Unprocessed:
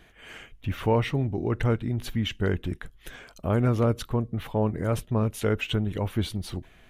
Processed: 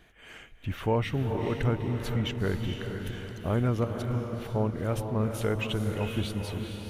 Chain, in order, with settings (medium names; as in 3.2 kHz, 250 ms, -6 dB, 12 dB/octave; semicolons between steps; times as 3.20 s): 3.84–4.56 s: compression, threshold -30 dBFS, peak gain reduction 11.5 dB; echo that smears into a reverb 457 ms, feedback 51%, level -5.5 dB; trim -3.5 dB